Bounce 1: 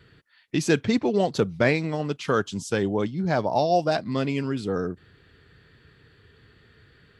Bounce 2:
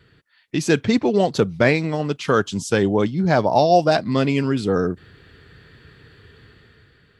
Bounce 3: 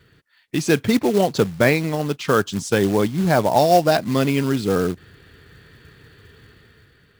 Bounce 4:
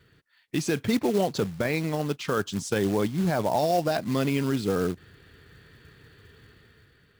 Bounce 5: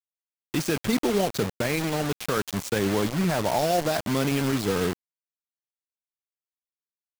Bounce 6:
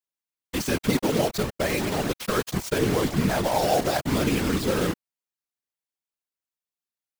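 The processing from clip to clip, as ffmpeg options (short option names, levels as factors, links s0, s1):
-af "dynaudnorm=f=150:g=9:m=2.37"
-af "acrusher=bits=4:mode=log:mix=0:aa=0.000001"
-af "alimiter=limit=0.316:level=0:latency=1:release=22,volume=0.562"
-af "acrusher=bits=4:mix=0:aa=0.000001"
-af "afftfilt=real='hypot(re,im)*cos(2*PI*random(0))':imag='hypot(re,im)*sin(2*PI*random(1))':win_size=512:overlap=0.75,volume=2.24"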